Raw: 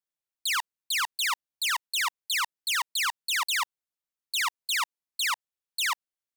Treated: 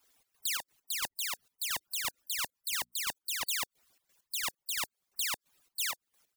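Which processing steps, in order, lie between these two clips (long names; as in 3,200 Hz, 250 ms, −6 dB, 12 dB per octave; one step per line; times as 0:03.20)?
harmonic-percussive split with one part muted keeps percussive
0:02.57–0:03.02: mains-hum notches 60/120/180/240 Hz
gate pattern "xx.xx.x..x..x.." 132 BPM −12 dB
in parallel at +2 dB: downward compressor, threshold −38 dBFS, peak gain reduction 12.5 dB
on the sum: every bin compressed towards the loudest bin 4 to 1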